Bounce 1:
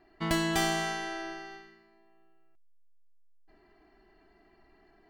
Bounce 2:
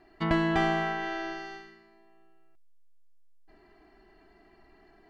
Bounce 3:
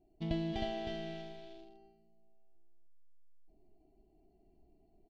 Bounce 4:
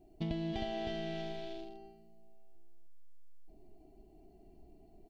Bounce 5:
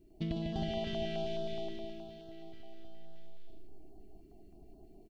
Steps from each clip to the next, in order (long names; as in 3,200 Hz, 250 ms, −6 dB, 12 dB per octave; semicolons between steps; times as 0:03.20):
treble cut that deepens with the level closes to 2,100 Hz, closed at −30 dBFS; level +3.5 dB
adaptive Wiener filter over 25 samples; drawn EQ curve 120 Hz 0 dB, 480 Hz −7 dB, 710 Hz −5 dB, 1,200 Hz −27 dB, 3,300 Hz 0 dB, 4,800 Hz −2 dB, 8,400 Hz −12 dB; single-tap delay 313 ms −4 dB; level −5 dB
downward compressor 4 to 1, threshold −44 dBFS, peak gain reduction 12.5 dB; level +8.5 dB
on a send: reverse bouncing-ball delay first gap 150 ms, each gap 1.5×, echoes 5; on the sum: notch on a step sequencer 9.5 Hz 750–2,200 Hz; level +1 dB